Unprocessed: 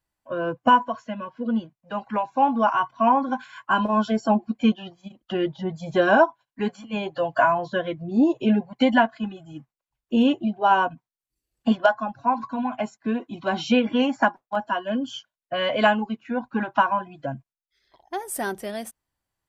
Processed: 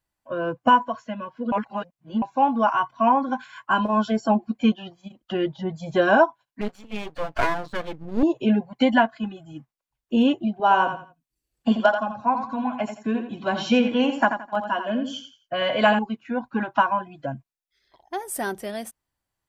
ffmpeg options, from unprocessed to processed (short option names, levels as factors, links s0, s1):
-filter_complex "[0:a]asettb=1/sr,asplit=3[s0][s1][s2];[s0]atrim=end=6.614[s3];[s1]atrim=start=6.61:end=8.23,asetpts=PTS-STARTPTS,afade=t=in:d=0.004:c=qsin,afade=t=out:st=1.616:d=0.004:c=qsin,aeval=exprs='max(val(0),0)':c=same[s4];[s2]atrim=start=8.226[s5];[s3][s4]acrossfade=d=0.004:c1=hsin:c2=qsin[s6];[s6][s5]acrossfade=d=0.004:c1=qsin:c2=hsin,asettb=1/sr,asplit=3[s7][s8][s9];[s7]atrim=end=10.514[s10];[s8]atrim=start=10.51:end=15.99,asetpts=PTS-STARTPTS,afade=t=in:d=0.004:c=qsin,afade=t=out:st=5.476:d=0.004:c=qsin,aecho=1:1:85|170|255:0.376|0.101|0.0274,atrim=end_sample=241668[s11];[s9]atrim=start=15.986[s12];[s10][s11]acrossfade=d=0.004:c1=hsin:c2=qsin[s13];[s13][s12]acrossfade=d=0.004:c1=qsin:c2=hsin,asplit=3[s14][s15][s16];[s14]atrim=end=1.522[s17];[s15]atrim=start=1.518:end=2.222,asetpts=PTS-STARTPTS,areverse[s18];[s16]atrim=start=2.218[s19];[s17][s18]acrossfade=d=0.004:c1=hsin:c2=hsin[s20];[s20][s19]acrossfade=d=0.004:c1=hsin:c2=hsin"